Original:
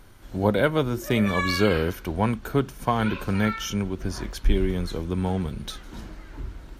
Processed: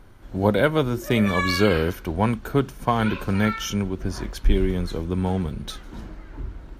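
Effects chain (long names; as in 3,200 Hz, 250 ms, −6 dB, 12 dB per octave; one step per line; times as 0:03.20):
one half of a high-frequency compander decoder only
level +2 dB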